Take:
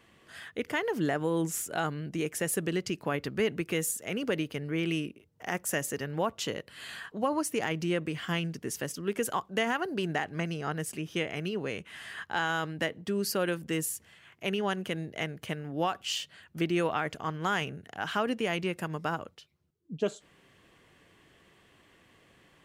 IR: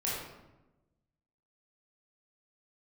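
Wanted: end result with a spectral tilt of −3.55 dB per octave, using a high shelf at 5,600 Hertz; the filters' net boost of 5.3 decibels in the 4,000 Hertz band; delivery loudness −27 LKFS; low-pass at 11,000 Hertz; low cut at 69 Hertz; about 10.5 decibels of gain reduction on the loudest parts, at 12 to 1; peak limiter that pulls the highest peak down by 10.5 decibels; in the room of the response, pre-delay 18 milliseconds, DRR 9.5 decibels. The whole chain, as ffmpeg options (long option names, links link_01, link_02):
-filter_complex "[0:a]highpass=69,lowpass=11000,equalizer=frequency=4000:width_type=o:gain=5.5,highshelf=frequency=5600:gain=7,acompressor=threshold=-34dB:ratio=12,alimiter=level_in=4dB:limit=-24dB:level=0:latency=1,volume=-4dB,asplit=2[link_01][link_02];[1:a]atrim=start_sample=2205,adelay=18[link_03];[link_02][link_03]afir=irnorm=-1:irlink=0,volume=-15.5dB[link_04];[link_01][link_04]amix=inputs=2:normalize=0,volume=12.5dB"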